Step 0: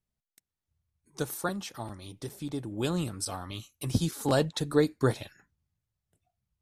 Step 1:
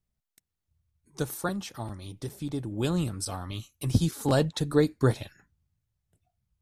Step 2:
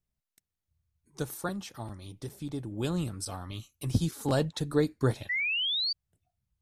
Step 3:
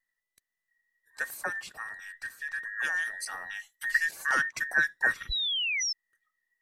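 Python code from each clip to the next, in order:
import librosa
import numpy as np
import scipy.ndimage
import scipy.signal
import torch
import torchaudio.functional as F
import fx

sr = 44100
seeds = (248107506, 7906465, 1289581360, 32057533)

y1 = fx.low_shelf(x, sr, hz=170.0, db=7.0)
y2 = fx.spec_paint(y1, sr, seeds[0], shape='rise', start_s=5.29, length_s=0.64, low_hz=1900.0, high_hz=4700.0, level_db=-26.0)
y2 = F.gain(torch.from_numpy(y2), -3.5).numpy()
y3 = fx.band_invert(y2, sr, width_hz=2000)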